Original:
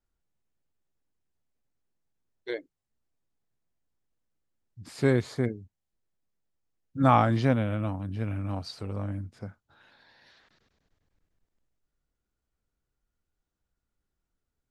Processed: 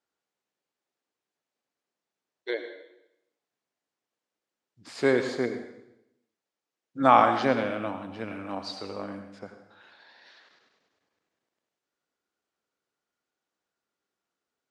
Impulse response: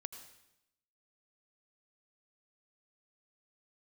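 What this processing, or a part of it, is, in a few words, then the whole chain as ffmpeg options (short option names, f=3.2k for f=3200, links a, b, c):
supermarket ceiling speaker: -filter_complex "[0:a]highpass=350,lowpass=6.8k[a];[1:a]atrim=start_sample=2205[b];[a][b]afir=irnorm=-1:irlink=0,volume=8dB"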